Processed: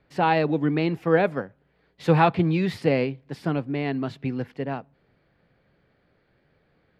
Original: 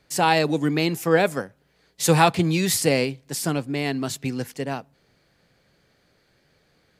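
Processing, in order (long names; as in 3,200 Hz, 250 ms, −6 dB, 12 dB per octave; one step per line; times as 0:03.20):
high-frequency loss of the air 390 metres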